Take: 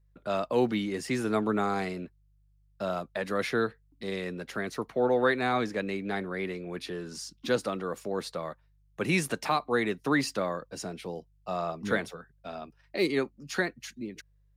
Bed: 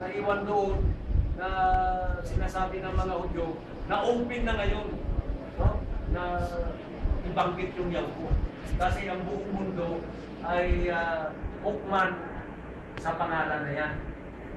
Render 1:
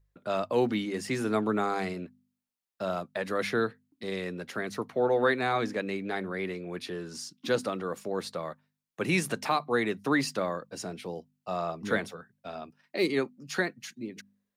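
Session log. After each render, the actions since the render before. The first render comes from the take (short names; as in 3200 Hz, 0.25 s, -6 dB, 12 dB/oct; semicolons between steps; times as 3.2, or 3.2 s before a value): de-hum 50 Hz, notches 5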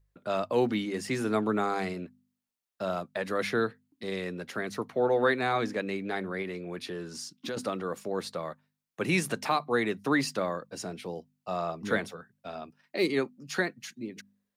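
6.42–7.57 compressor, threshold -31 dBFS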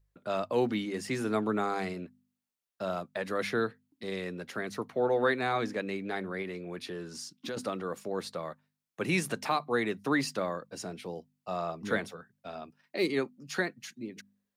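gain -2 dB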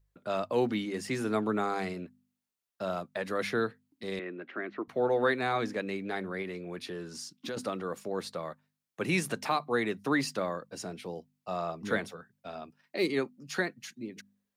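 4.19–4.88 speaker cabinet 300–2600 Hz, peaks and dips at 330 Hz +9 dB, 480 Hz -8 dB, 890 Hz -6 dB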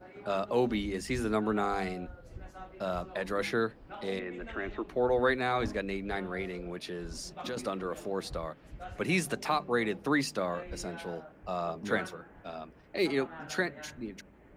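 add bed -17 dB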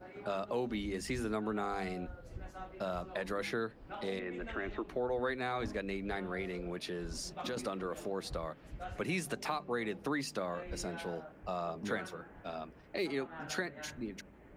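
compressor 2.5:1, threshold -35 dBFS, peak gain reduction 9 dB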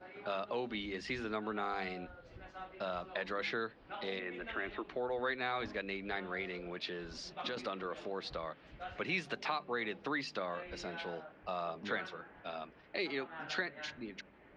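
LPF 4100 Hz 24 dB/oct; tilt +2.5 dB/oct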